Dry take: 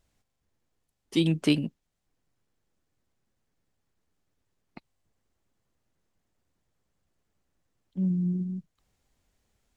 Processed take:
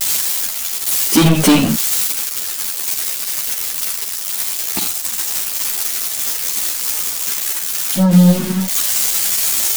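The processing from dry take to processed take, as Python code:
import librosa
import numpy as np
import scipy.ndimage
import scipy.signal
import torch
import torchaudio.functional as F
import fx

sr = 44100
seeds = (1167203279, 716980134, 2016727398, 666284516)

p1 = x + 0.5 * 10.0 ** (-25.5 / 20.0) * np.diff(np.sign(x), prepend=np.sign(x[:1]))
p2 = p1 + fx.room_early_taps(p1, sr, ms=(47, 79), db=(-9.0, -11.5), dry=0)
p3 = fx.leveller(p2, sr, passes=5)
p4 = fx.ensemble(p3, sr)
y = p4 * librosa.db_to_amplitude(7.0)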